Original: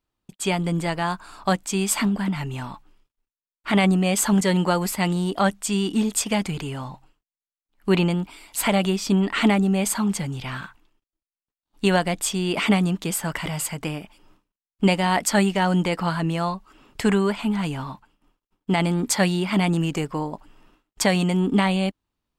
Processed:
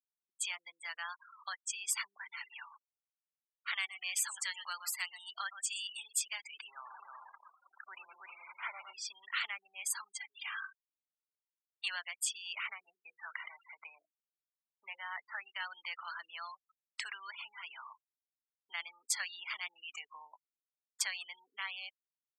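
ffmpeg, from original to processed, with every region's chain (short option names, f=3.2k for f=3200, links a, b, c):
-filter_complex "[0:a]asettb=1/sr,asplit=3[a][b][c];[a]atrim=end=2.244[d];[b]atrim=start=2.24:end=6.16,asetpts=PTS-STARTPTS,afade=t=in:d=0.004:c=qsin,afade=t=out:st=3.916:d=0.004:c=qsin,highpass=f=990:p=1,aecho=1:1:120:0.224,atrim=end_sample=172872[e];[c]atrim=start=6.156[f];[d][e]acrossfade=d=0.004:c1=hsin:c2=qsin[g];[g][f]acrossfade=d=0.004:c1=qsin:c2=hsin,asettb=1/sr,asplit=3[h][i][j];[h]atrim=end=6.684[k];[i]atrim=start=6.68:end=8.93,asetpts=PTS-STARTPTS,afade=t=in:d=0.004:c=qsin,afade=t=out:st=2.246:d=0.004:c=qsin,aeval=exprs='val(0)+0.5*0.0668*sgn(val(0))':c=same,lowpass=1.5k,aecho=1:1:119|207|215|236|316|412:0.355|0.2|0.112|0.119|0.708|0.106,atrim=end_sample=99225[l];[j]atrim=start=8.926[m];[k][l]acrossfade=d=0.004:c1=hsin:c2=qsin[n];[n][m]acrossfade=d=0.004:c1=qsin:c2=hsin,asettb=1/sr,asplit=3[o][p][q];[o]atrim=end=10.124[r];[p]atrim=start=10.12:end=11.88,asetpts=PTS-STARTPTS,afade=t=in:d=0.004:c=qsin,afade=t=out:st=1.756:d=0.004:c=qsin,highpass=630,highshelf=f=9.8k:g=-11.5,aecho=1:1:2.5:0.51,atrim=end_sample=77616[s];[q]atrim=start=11.876[t];[r][s]acrossfade=d=0.004:c1=hsin:c2=qsin[u];[u][t]acrossfade=d=0.004:c1=qsin:c2=hsin,asettb=1/sr,asplit=3[v][w][x];[v]atrim=end=12.584[y];[w]atrim=start=12.58:end=15.53,asetpts=PTS-STARTPTS,afade=t=in:d=0.004:c=qsin,afade=t=out:st=2.946:d=0.004:c=qsin,lowpass=1.9k,bandreject=f=60:t=h:w=6,bandreject=f=120:t=h:w=6,bandreject=f=180:t=h:w=6,bandreject=f=240:t=h:w=6,bandreject=f=300:t=h:w=6,bandreject=f=360:t=h:w=6,bandreject=f=420:t=h:w=6,bandreject=f=480:t=h:w=6,bandreject=f=540:t=h:w=6[z];[x]atrim=start=15.526[aa];[y][z]acrossfade=d=0.004:c1=hsin:c2=qsin[ab];[ab][aa]acrossfade=d=0.004:c1=qsin:c2=hsin,acompressor=threshold=-29dB:ratio=2,afftfilt=real='re*gte(hypot(re,im),0.0224)':imag='im*gte(hypot(re,im),0.0224)':win_size=1024:overlap=0.75,highpass=f=1.3k:w=0.5412,highpass=f=1.3k:w=1.3066,volume=-4.5dB"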